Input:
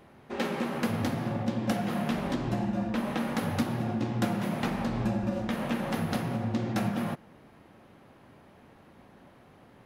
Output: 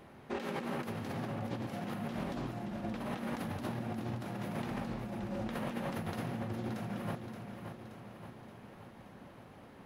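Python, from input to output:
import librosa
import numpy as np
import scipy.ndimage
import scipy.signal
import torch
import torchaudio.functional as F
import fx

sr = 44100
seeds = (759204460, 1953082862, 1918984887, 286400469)

p1 = fx.over_compress(x, sr, threshold_db=-35.0, ratio=-1.0)
p2 = p1 + fx.echo_feedback(p1, sr, ms=575, feedback_pct=56, wet_db=-8, dry=0)
y = p2 * librosa.db_to_amplitude(-4.5)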